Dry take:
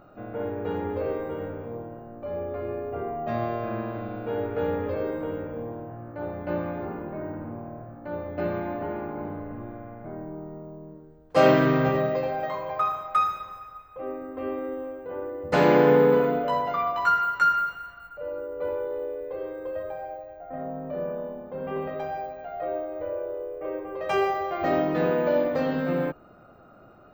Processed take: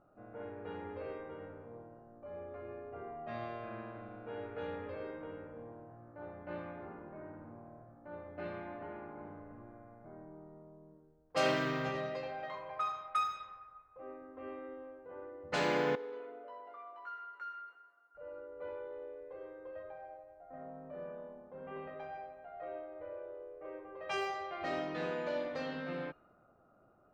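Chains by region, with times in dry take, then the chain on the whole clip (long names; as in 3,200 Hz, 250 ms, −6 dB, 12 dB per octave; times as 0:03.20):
0:15.95–0:18.15: downward compressor 1.5 to 1, threshold −32 dBFS + four-pole ladder high-pass 310 Hz, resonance 45%
whole clip: first-order pre-emphasis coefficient 0.9; low-pass that shuts in the quiet parts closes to 940 Hz, open at −35 dBFS; high-shelf EQ 6,000 Hz −7 dB; level +4 dB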